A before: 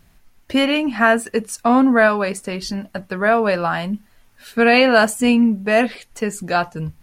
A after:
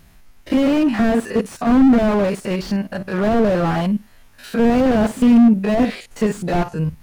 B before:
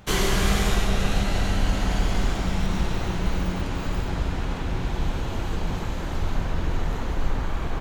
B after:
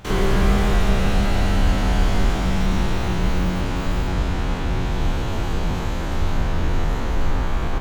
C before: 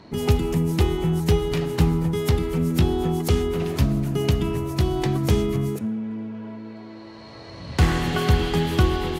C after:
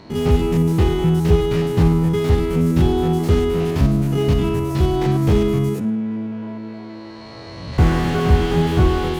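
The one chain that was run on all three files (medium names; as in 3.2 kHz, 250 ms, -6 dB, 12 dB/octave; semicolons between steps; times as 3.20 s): spectrogram pixelated in time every 50 ms; slew-rate limiter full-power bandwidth 47 Hz; trim +6 dB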